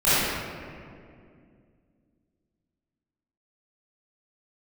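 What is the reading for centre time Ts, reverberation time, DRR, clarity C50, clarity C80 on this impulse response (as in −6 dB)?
159 ms, 2.3 s, −15.5 dB, −7.0 dB, −3.0 dB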